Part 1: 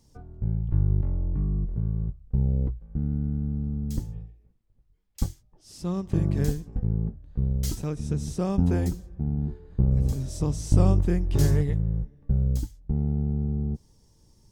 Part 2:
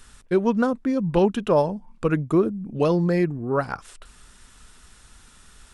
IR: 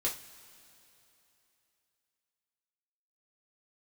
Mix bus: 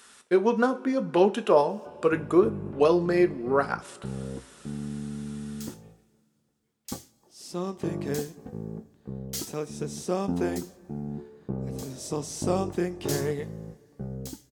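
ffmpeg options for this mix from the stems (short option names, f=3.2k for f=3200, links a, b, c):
-filter_complex "[0:a]adelay=1700,volume=1.5dB,asplit=2[a][b];[b]volume=-14.5dB[c];[1:a]volume=-2dB,asplit=2[d][e];[e]volume=-9dB[f];[2:a]atrim=start_sample=2205[g];[c][f]amix=inputs=2:normalize=0[h];[h][g]afir=irnorm=-1:irlink=0[i];[a][d][i]amix=inputs=3:normalize=0,highpass=300"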